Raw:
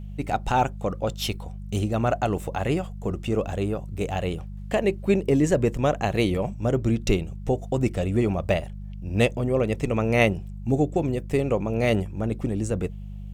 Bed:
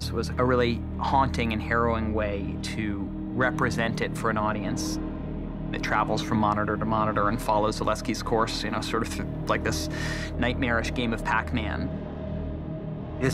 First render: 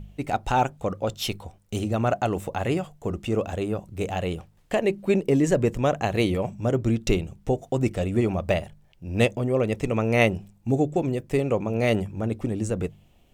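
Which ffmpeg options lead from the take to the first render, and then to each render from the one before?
-af "bandreject=f=50:t=h:w=4,bandreject=f=100:t=h:w=4,bandreject=f=150:t=h:w=4,bandreject=f=200:t=h:w=4"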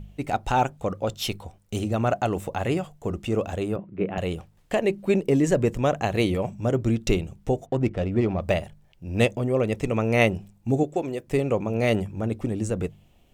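-filter_complex "[0:a]asettb=1/sr,asplit=3[a][b][c];[a]atrim=end=3.764[d];[b]atrim=start=3.76:end=4.18,asetpts=PTS-STARTPTS,afade=t=in:d=0.004:c=qsin,afade=t=out:st=0.416:d=0.004:c=qsin,highpass=160,equalizer=f=190:t=q:w=4:g=8,equalizer=f=350:t=q:w=4:g=7,equalizer=f=800:t=q:w=4:g=-7,lowpass=f=2.4k:w=0.5412,lowpass=f=2.4k:w=1.3066[e];[c]atrim=start=4.176[f];[d][e]acrossfade=d=0.004:c1=hsin:c2=qsin[g];[g][f]acrossfade=d=0.004:c1=qsin:c2=hsin,asettb=1/sr,asplit=3[h][i][j];[h]atrim=end=7.664[k];[i]atrim=start=7.66:end=8.41,asetpts=PTS-STARTPTS,afade=t=in:d=0.004:c=qsin,afade=t=out:st=0.746:d=0.004:c=qsin,adynamicsmooth=sensitivity=3:basefreq=2.1k[l];[j]atrim=start=8.406[m];[k][l]acrossfade=d=0.004:c1=hsin:c2=qsin[n];[n][m]acrossfade=d=0.004:c1=qsin:c2=hsin,asettb=1/sr,asplit=3[o][p][q];[o]atrim=end=10.834[r];[p]atrim=start=10.83:end=11.27,asetpts=PTS-STARTPTS,afade=t=in:d=0.004:c=qsin,afade=t=out:st=0.436:d=0.004:c=qsin,bass=f=250:g=-11,treble=f=4k:g=0[s];[q]atrim=start=11.266[t];[r][s]acrossfade=d=0.004:c1=hsin:c2=qsin[u];[u][t]acrossfade=d=0.004:c1=qsin:c2=hsin"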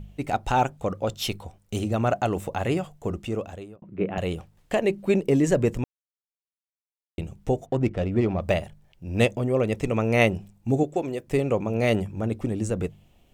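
-filter_complex "[0:a]asplit=4[a][b][c][d];[a]atrim=end=3.82,asetpts=PTS-STARTPTS,afade=t=out:st=3.07:d=0.75[e];[b]atrim=start=3.82:end=5.84,asetpts=PTS-STARTPTS,afade=t=in:d=0.004:c=hsin,afade=t=out:st=2.016:d=0.004:c=hsin[f];[c]atrim=start=5.84:end=7.18,asetpts=PTS-STARTPTS,volume=0[g];[d]atrim=start=7.18,asetpts=PTS-STARTPTS,afade=t=in:d=0.004:c=hsin[h];[e][f][g][h]concat=n=4:v=0:a=1"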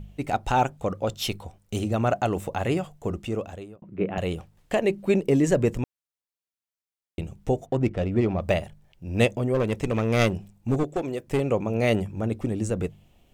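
-filter_complex "[0:a]asplit=3[a][b][c];[a]afade=t=out:st=9.53:d=0.02[d];[b]aeval=exprs='clip(val(0),-1,0.075)':c=same,afade=t=in:st=9.53:d=0.02,afade=t=out:st=11.39:d=0.02[e];[c]afade=t=in:st=11.39:d=0.02[f];[d][e][f]amix=inputs=3:normalize=0"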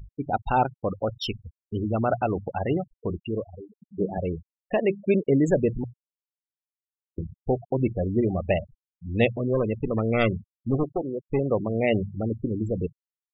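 -af "bandreject=f=60:t=h:w=6,bandreject=f=120:t=h:w=6,afftfilt=real='re*gte(hypot(re,im),0.0631)':imag='im*gte(hypot(re,im),0.0631)':win_size=1024:overlap=0.75"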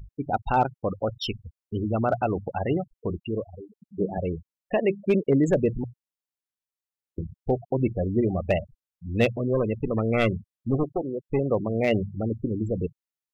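-af "asoftclip=type=hard:threshold=-13dB"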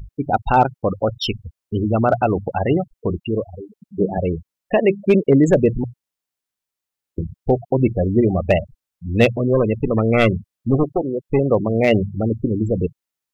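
-af "volume=7.5dB"

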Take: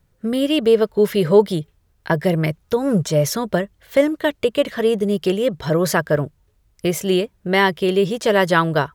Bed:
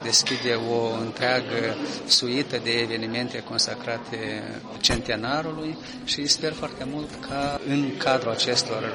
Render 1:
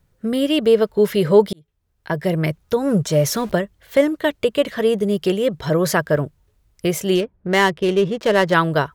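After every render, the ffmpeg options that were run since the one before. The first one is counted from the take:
-filter_complex "[0:a]asettb=1/sr,asplit=3[a][b][c];[a]atrim=end=3.114[d];[b]atrim=start=3.11:end=3.52,asetpts=PTS-STARTPTS,afade=t=in:d=0.004:c=qsin,afade=t=out:st=0.406:d=0.004:c=qsin,aeval=exprs='val(0)+0.5*0.0211*sgn(val(0))':c=same[e];[c]atrim=start=3.516[f];[d][e]acrossfade=d=0.004:c1=hsin:c2=qsin[g];[g][f]acrossfade=d=0.004:c1=qsin:c2=hsin,asettb=1/sr,asplit=3[h][i][j];[h]atrim=end=7.154[k];[i]atrim=start=7.15:end=8.54,asetpts=PTS-STARTPTS,afade=t=in:d=0.004:c=qsin,afade=t=out:st=1.386:d=0.004:c=qsin,adynamicsmooth=sensitivity=3:basefreq=1.3k[l];[j]atrim=start=8.536[m];[k][l]acrossfade=d=0.004:c1=hsin:c2=qsin[n];[n][m]acrossfade=d=0.004:c1=qsin:c2=hsin,asplit=2[o][p];[o]atrim=end=1.53,asetpts=PTS-STARTPTS,afade=t=out:st=1.526:d=0.004:c=hsin[q];[p]atrim=start=1.53,asetpts=PTS-STARTPTS,afade=t=in:d=0.96[r];[q][r]concat=n=2:v=0:a=1"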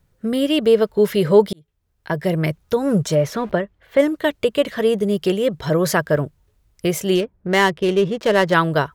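-filter_complex "[0:a]asplit=3[a][b][c];[a]afade=t=out:st=3.14:d=0.02[d];[b]bass=f=250:g=-3,treble=f=4k:g=-15,afade=t=in:st=3.14:d=0.02,afade=t=out:st=3.98:d=0.02[e];[c]afade=t=in:st=3.98:d=0.02[f];[d][e][f]amix=inputs=3:normalize=0"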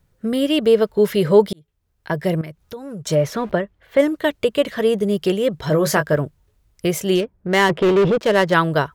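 -filter_complex "[0:a]asettb=1/sr,asplit=3[a][b][c];[a]atrim=end=2.414[d];[b]atrim=start=2.41:end=3.07,asetpts=PTS-STARTPTS,afade=t=in:d=0.004:c=qsin,afade=t=out:st=0.656:d=0.004:c=qsin,acompressor=threshold=-41dB:ratio=2:attack=3.2:release=140:knee=1:detection=peak[e];[c]atrim=start=3.066[f];[d][e]acrossfade=d=0.004:c1=hsin:c2=qsin[g];[g][f]acrossfade=d=0.004:c1=qsin:c2=hsin,asettb=1/sr,asplit=3[h][i][j];[h]atrim=end=5.684[k];[i]atrim=start=5.68:end=6.14,asetpts=PTS-STARTPTS,afade=t=in:d=0.004:c=qsin,afade=t=out:st=0.456:d=0.004:c=qsin,asplit=2[l][m];[m]adelay=20,volume=-8dB[n];[l][n]amix=inputs=2:normalize=0,atrim=end_sample=20286[o];[j]atrim=start=6.136[p];[k][o]acrossfade=d=0.004:c1=hsin:c2=qsin[q];[q][p]acrossfade=d=0.004:c1=qsin:c2=hsin,asettb=1/sr,asplit=3[r][s][t];[r]atrim=end=7.694[u];[s]atrim=start=7.69:end=8.18,asetpts=PTS-STARTPTS,afade=t=in:d=0.004:c=qsin,afade=t=out:st=0.486:d=0.004:c=qsin,asplit=2[v][w];[w]highpass=f=720:p=1,volume=28dB,asoftclip=type=tanh:threshold=-8dB[x];[v][x]amix=inputs=2:normalize=0,lowpass=f=1.1k:p=1,volume=-6dB[y];[t]atrim=start=8.176[z];[u][y]acrossfade=d=0.004:c1=hsin:c2=qsin[aa];[aa][z]acrossfade=d=0.004:c1=qsin:c2=hsin"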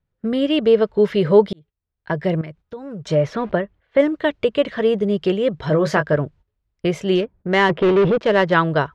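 -af "lowpass=3.6k,agate=range=-14dB:threshold=-42dB:ratio=16:detection=peak"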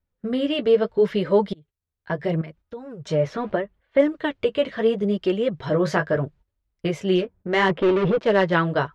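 -af "flanger=delay=3.2:depth=8.6:regen=-26:speed=0.76:shape=sinusoidal"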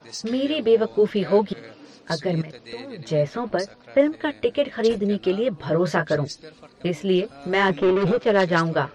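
-filter_complex "[1:a]volume=-16dB[a];[0:a][a]amix=inputs=2:normalize=0"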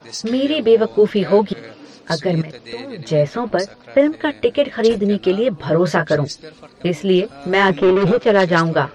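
-af "volume=5.5dB,alimiter=limit=-3dB:level=0:latency=1"

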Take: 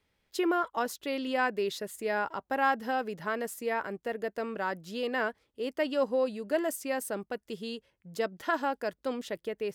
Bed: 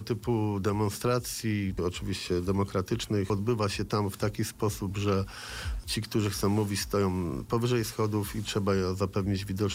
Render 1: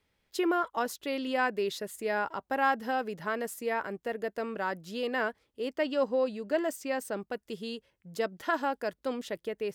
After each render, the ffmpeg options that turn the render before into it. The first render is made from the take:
-filter_complex "[0:a]asettb=1/sr,asplit=3[a][b][c];[a]atrim=end=5.684[d];[b]atrim=start=5.68:end=7.28,asetpts=PTS-STARTPTS,afade=t=in:d=0.004:c=qsin,afade=t=out:st=1.596:d=0.004:c=qsin,equalizer=f=11k:t=o:w=0.4:g=-14[e];[c]atrim=start=7.276[f];[d][e]acrossfade=d=0.004:c1=hsin:c2=qsin[g];[g][f]acrossfade=d=0.004:c1=qsin:c2=hsin"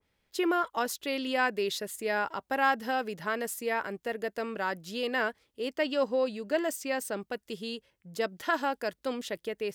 -af "adynamicequalizer=threshold=0.00631:dfrequency=1800:dqfactor=0.7:tfrequency=1800:tqfactor=0.7:attack=5:release=100:ratio=0.375:range=2.5:mode=boostabove:tftype=highshelf"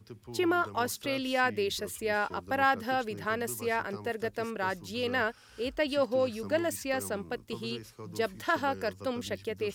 -filter_complex "[1:a]volume=-16.5dB[a];[0:a][a]amix=inputs=2:normalize=0"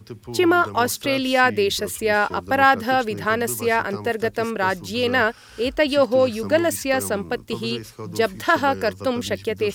-af "volume=10.5dB"

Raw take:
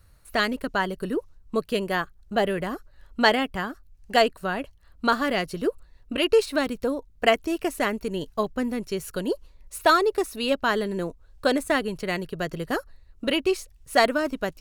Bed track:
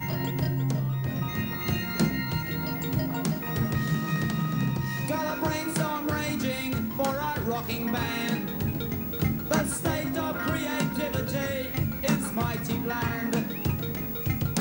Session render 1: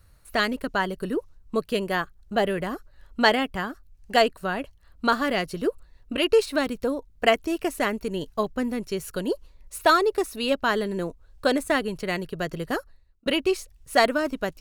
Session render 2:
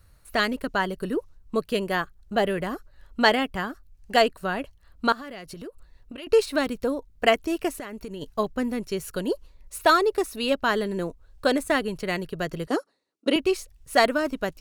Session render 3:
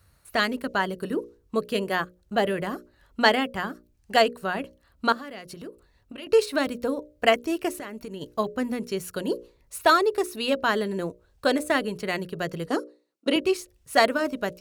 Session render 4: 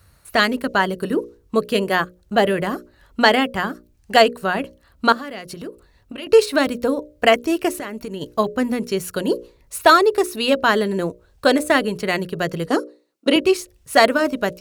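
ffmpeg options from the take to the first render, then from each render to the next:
-filter_complex "[0:a]asplit=2[a][b];[a]atrim=end=13.26,asetpts=PTS-STARTPTS,afade=t=out:st=12.7:d=0.56[c];[b]atrim=start=13.26,asetpts=PTS-STARTPTS,afade=t=in:d=0.004:c=hsin[d];[c][d]concat=n=2:v=0:a=1"
-filter_complex "[0:a]asettb=1/sr,asplit=3[a][b][c];[a]atrim=end=5.124[d];[b]atrim=start=5.12:end=6.27,asetpts=PTS-STARTPTS,afade=t=in:d=0.004:c=qsin,afade=t=out:st=1.146:d=0.004:c=qsin,acompressor=threshold=-36dB:ratio=6:attack=3.2:release=140:knee=1:detection=peak[e];[c]atrim=start=6.266[f];[d][e]acrossfade=d=0.004:c1=hsin:c2=qsin[g];[g][f]acrossfade=d=0.004:c1=qsin:c2=hsin,asplit=3[h][i][j];[h]afade=t=out:st=7.72:d=0.02[k];[i]acompressor=threshold=-31dB:ratio=16:attack=3.2:release=140:knee=1:detection=peak,afade=t=in:st=7.72:d=0.02,afade=t=out:st=8.21:d=0.02[l];[j]afade=t=in:st=8.21:d=0.02[m];[k][l][m]amix=inputs=3:normalize=0,asettb=1/sr,asplit=3[n][o][p];[n]atrim=end=12.674[q];[o]atrim=start=12.67:end=13.36,asetpts=PTS-STARTPTS,afade=t=in:d=0.004:c=qsin,afade=t=out:st=0.686:d=0.004:c=qsin,highpass=f=220:w=0.5412,highpass=f=220:w=1.3066,equalizer=f=300:t=q:w=4:g=7,equalizer=f=450:t=q:w=4:g=4,equalizer=f=1.7k:t=q:w=4:g=-6,equalizer=f=2.6k:t=q:w=4:g=-3,equalizer=f=5.7k:t=q:w=4:g=3,equalizer=f=9.6k:t=q:w=4:g=4,lowpass=f=9.9k:w=0.5412,lowpass=f=9.9k:w=1.3066[r];[p]atrim=start=13.356[s];[q][r]acrossfade=d=0.004:c1=hsin:c2=qsin[t];[t][s]acrossfade=d=0.004:c1=qsin:c2=hsin"
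-af "highpass=69,bandreject=f=60:t=h:w=6,bandreject=f=120:t=h:w=6,bandreject=f=180:t=h:w=6,bandreject=f=240:t=h:w=6,bandreject=f=300:t=h:w=6,bandreject=f=360:t=h:w=6,bandreject=f=420:t=h:w=6,bandreject=f=480:t=h:w=6,bandreject=f=540:t=h:w=6,bandreject=f=600:t=h:w=6"
-af "volume=7dB,alimiter=limit=-1dB:level=0:latency=1"

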